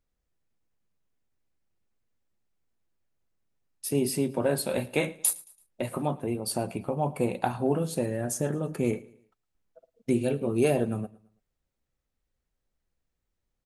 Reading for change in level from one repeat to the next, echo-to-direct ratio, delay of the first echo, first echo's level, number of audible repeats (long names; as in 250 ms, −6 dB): −8.5 dB, −21.0 dB, 111 ms, −21.5 dB, 2